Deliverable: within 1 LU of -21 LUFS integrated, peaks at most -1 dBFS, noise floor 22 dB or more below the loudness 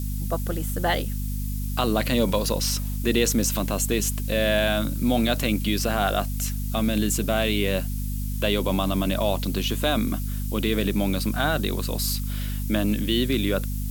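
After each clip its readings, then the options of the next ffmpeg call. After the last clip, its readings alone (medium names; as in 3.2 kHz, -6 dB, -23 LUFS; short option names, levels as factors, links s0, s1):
hum 50 Hz; highest harmonic 250 Hz; hum level -26 dBFS; noise floor -28 dBFS; noise floor target -47 dBFS; loudness -24.5 LUFS; peak level -6.5 dBFS; loudness target -21.0 LUFS
-> -af "bandreject=f=50:t=h:w=6,bandreject=f=100:t=h:w=6,bandreject=f=150:t=h:w=6,bandreject=f=200:t=h:w=6,bandreject=f=250:t=h:w=6"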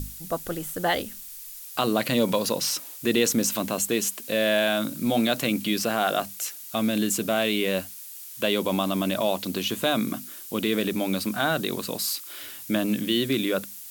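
hum not found; noise floor -41 dBFS; noise floor target -48 dBFS
-> -af "afftdn=nr=7:nf=-41"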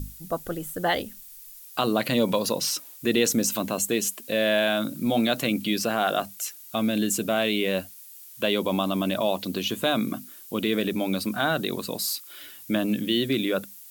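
noise floor -46 dBFS; noise floor target -48 dBFS
-> -af "afftdn=nr=6:nf=-46"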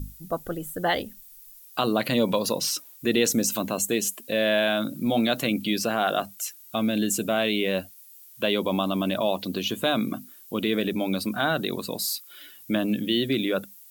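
noise floor -49 dBFS; loudness -26.0 LUFS; peak level -8.0 dBFS; loudness target -21.0 LUFS
-> -af "volume=1.78"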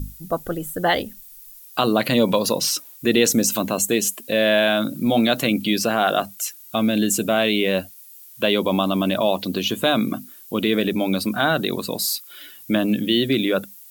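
loudness -21.0 LUFS; peak level -3.0 dBFS; noise floor -44 dBFS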